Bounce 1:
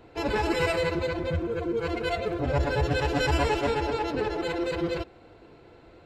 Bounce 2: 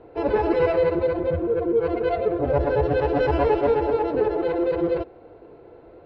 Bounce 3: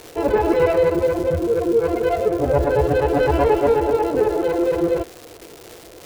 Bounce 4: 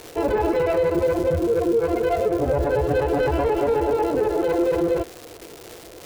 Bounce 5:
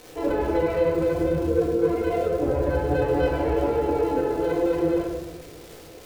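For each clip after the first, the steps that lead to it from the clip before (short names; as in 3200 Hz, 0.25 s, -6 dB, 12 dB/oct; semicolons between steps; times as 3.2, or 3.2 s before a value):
EQ curve 220 Hz 0 dB, 460 Hz +9 dB, 4800 Hz -12 dB, 7100 Hz -27 dB
crackle 420/s -32 dBFS; gain +3.5 dB
limiter -13 dBFS, peak gain reduction 7.5 dB
shoebox room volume 660 m³, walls mixed, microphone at 2 m; gain -8 dB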